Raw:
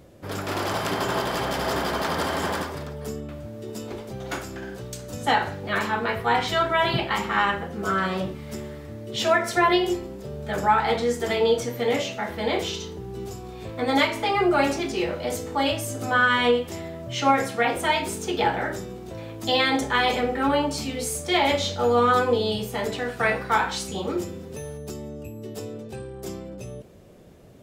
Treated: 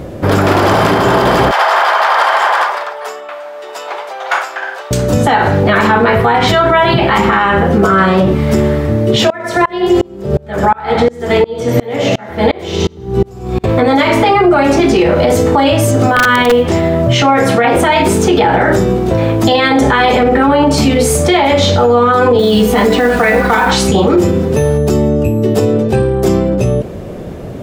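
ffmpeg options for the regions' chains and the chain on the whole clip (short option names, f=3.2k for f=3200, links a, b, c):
-filter_complex "[0:a]asettb=1/sr,asplit=3[a][b][c];[a]atrim=end=1.514[d];[b]atrim=start=1.51:end=4.91,asetpts=PTS-STARTPTS,afade=t=in:d=0.004:c=qsin,afade=t=out:st=3.396:d=0.004:c=qsin,highpass=f=760:w=0.5412,highpass=f=760:w=1.3066,highshelf=f=5k:g=-11.5[e];[c]atrim=start=4.906[f];[d][e]acrossfade=d=0.004:c1=hsin:c2=qsin[g];[g][f]acrossfade=d=0.004:c1=qsin:c2=hsin,asettb=1/sr,asplit=3[h][i][j];[h]atrim=end=9.304[k];[i]atrim=start=9.3:end=13.64,asetpts=PTS-STARTPTS,afade=t=in:d=0.004:c=qsin,afade=t=out:st=4.336:d=0.004:c=qsin,aecho=1:1:97|194|291|388:0.355|0.128|0.046|0.0166,atrim=end_sample=191394,aeval=exprs='val(0)*pow(10,-32*if(lt(mod(-2.8*n/s,1),2*abs(-2.8)/1000),1-mod(-2.8*n/s,1)/(2*abs(-2.8)/1000),(mod(-2.8*n/s,1)-2*abs(-2.8)/1000)/(1-2*abs(-2.8)/1000))/20)':c=same[l];[j]atrim=start=13.636[m];[k][l]acrossfade=d=0.004:c1=hsin:c2=qsin[n];[n][m]acrossfade=d=0.004:c1=qsin:c2=hsin,asettb=1/sr,asplit=3[o][p][q];[o]atrim=end=15.914[r];[p]atrim=start=15.91:end=16.88,asetpts=PTS-STARTPTS,afade=t=in:d=0.004:c=qsin,afade=t=out:st=0.966:d=0.004:c=qsin,lowpass=8.1k,acrusher=bits=7:mode=log:mix=0:aa=0.000001,aeval=exprs='(mod(3.55*val(0)+1,2)-1)/3.55':c=same[s];[q]atrim=start=16.876[t];[r][s]acrossfade=d=0.004:c1=hsin:c2=qsin[u];[u][t]acrossfade=d=0.004:c1=qsin:c2=hsin,asettb=1/sr,asplit=3[v][w][x];[v]atrim=end=22.394[y];[w]atrim=start=22.39:end=23.71,asetpts=PTS-STARTPTS,afade=t=in:d=0.004:c=qsin,afade=t=out:st=1.316:d=0.004:c=qsin,aecho=1:1:4.1:0.72,atrim=end_sample=58212,acompressor=threshold=-22dB:ratio=6:attack=3.2:release=140:knee=1:detection=peak,acrusher=bits=4:mode=log:mix=0:aa=0.000001[z];[x]atrim=start=23.706[aa];[y][z]acrossfade=d=0.004:c1=hsin:c2=qsin[ab];[ab][aa]acrossfade=d=0.004:c1=qsin:c2=hsin,highshelf=f=2.7k:g=-10.5,acompressor=threshold=-24dB:ratio=6,alimiter=level_in=26dB:limit=-1dB:release=50:level=0:latency=1,volume=-1dB"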